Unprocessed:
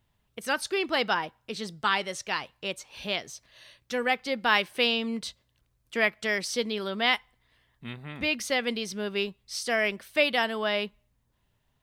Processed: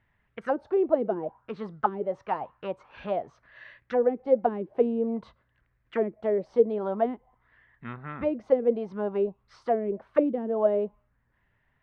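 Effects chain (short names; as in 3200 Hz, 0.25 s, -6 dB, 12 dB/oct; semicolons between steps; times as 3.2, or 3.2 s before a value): envelope low-pass 320–1900 Hz down, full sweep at -21 dBFS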